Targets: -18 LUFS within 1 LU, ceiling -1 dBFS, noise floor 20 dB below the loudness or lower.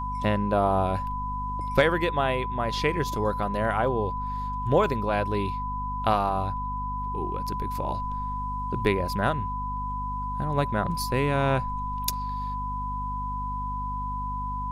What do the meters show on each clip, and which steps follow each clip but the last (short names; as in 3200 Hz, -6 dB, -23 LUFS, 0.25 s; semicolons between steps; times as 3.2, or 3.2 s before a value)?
hum 50 Hz; harmonics up to 250 Hz; hum level -32 dBFS; steady tone 1000 Hz; tone level -30 dBFS; loudness -27.5 LUFS; peak -7.5 dBFS; loudness target -18.0 LUFS
-> de-hum 50 Hz, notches 5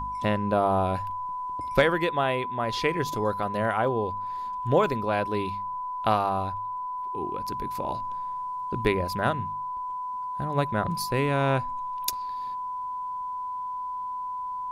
hum none; steady tone 1000 Hz; tone level -30 dBFS
-> notch 1000 Hz, Q 30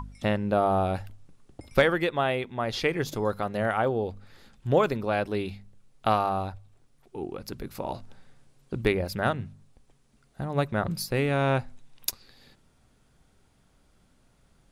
steady tone none; loudness -28.0 LUFS; peak -8.0 dBFS; loudness target -18.0 LUFS
-> gain +10 dB; limiter -1 dBFS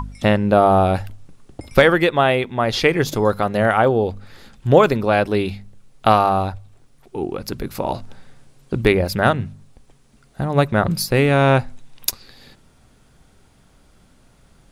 loudness -18.5 LUFS; peak -1.0 dBFS; noise floor -54 dBFS